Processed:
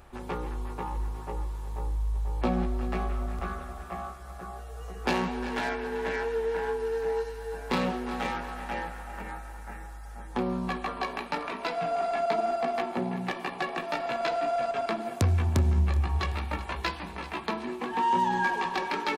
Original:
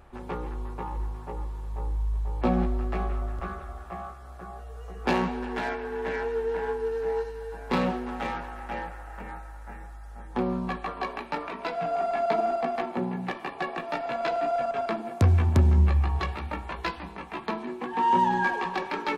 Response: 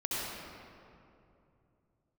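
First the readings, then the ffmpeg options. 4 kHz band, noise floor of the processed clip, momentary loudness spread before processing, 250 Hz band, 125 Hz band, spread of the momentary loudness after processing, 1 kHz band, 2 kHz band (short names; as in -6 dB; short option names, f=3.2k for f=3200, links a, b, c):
+3.0 dB, -42 dBFS, 17 LU, -2.0 dB, -3.5 dB, 13 LU, -1.5 dB, 0.0 dB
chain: -filter_complex "[0:a]highshelf=f=3.2k:g=8,asplit=2[a][b];[b]aecho=0:1:378|756|1134|1512:0.158|0.0697|0.0307|0.0135[c];[a][c]amix=inputs=2:normalize=0,acompressor=threshold=-28dB:ratio=1.5"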